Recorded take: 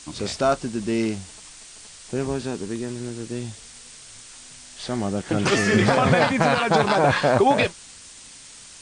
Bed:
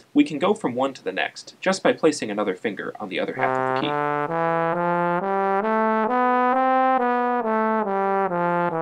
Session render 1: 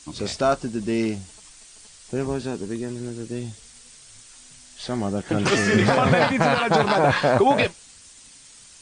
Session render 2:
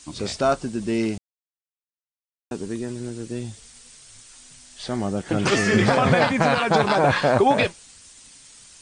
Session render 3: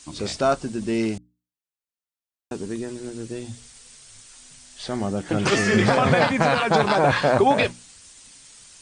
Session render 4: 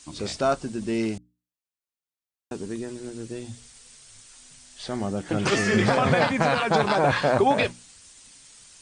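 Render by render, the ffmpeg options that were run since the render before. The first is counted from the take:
-af "afftdn=nr=6:nf=-44"
-filter_complex "[0:a]asplit=3[s0][s1][s2];[s0]atrim=end=1.18,asetpts=PTS-STARTPTS,afade=t=out:st=1.176:d=0.004:c=hsin[s3];[s1]atrim=start=1.18:end=2.51,asetpts=PTS-STARTPTS,volume=0[s4];[s2]atrim=start=2.51,asetpts=PTS-STARTPTS,afade=t=in:d=0.004:c=hsin[s5];[s3][s4][s5]concat=n=3:v=0:a=1"
-af "bandreject=f=60:t=h:w=6,bandreject=f=120:t=h:w=6,bandreject=f=180:t=h:w=6,bandreject=f=240:t=h:w=6,bandreject=f=300:t=h:w=6"
-af "volume=0.75"

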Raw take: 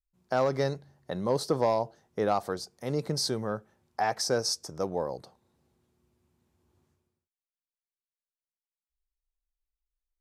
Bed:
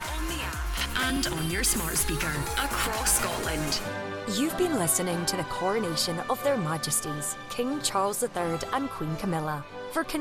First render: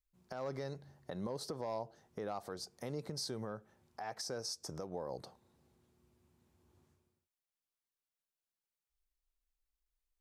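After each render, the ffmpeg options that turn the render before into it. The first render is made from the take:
-af "acompressor=threshold=0.0251:ratio=4,alimiter=level_in=2.11:limit=0.0631:level=0:latency=1:release=307,volume=0.473"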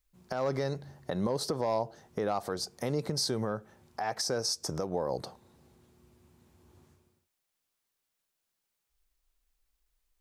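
-af "volume=3.16"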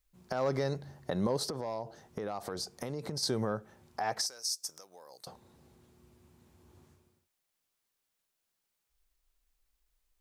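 -filter_complex "[0:a]asettb=1/sr,asplit=3[s0][s1][s2];[s0]atrim=end=1.464[s3];[s1]atrim=start=1.46:end=3.23,asetpts=PTS-STARTPTS,afade=t=in:d=0.004:c=qsin,afade=t=out:st=1.766:d=0.004:c=qsin,acompressor=threshold=0.0251:ratio=10:attack=3.2:release=140:knee=1:detection=peak[s4];[s2]atrim=start=3.226[s5];[s3][s4]acrossfade=d=0.004:c1=hsin:c2=qsin[s6];[s6][s5]acrossfade=d=0.004:c1=qsin:c2=hsin,asettb=1/sr,asplit=3[s7][s8][s9];[s7]atrim=end=4.264[s10];[s8]atrim=start=4.26:end=5.27,asetpts=PTS-STARTPTS,afade=t=in:d=0.004:c=qsin,afade=t=out:st=1.006:d=0.004:c=qsin,aderivative[s11];[s9]atrim=start=5.266[s12];[s10][s11]acrossfade=d=0.004:c1=hsin:c2=qsin[s13];[s13][s12]acrossfade=d=0.004:c1=qsin:c2=hsin"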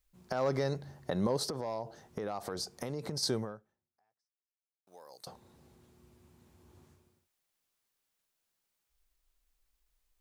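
-filter_complex "[0:a]asplit=2[s0][s1];[s0]atrim=end=4.87,asetpts=PTS-STARTPTS,afade=t=out:st=3.35:d=1.52:c=exp[s2];[s1]atrim=start=4.87,asetpts=PTS-STARTPTS,afade=t=in:d=0.004:c=hsin[s3];[s2][s3]concat=n=2:v=0:a=1"

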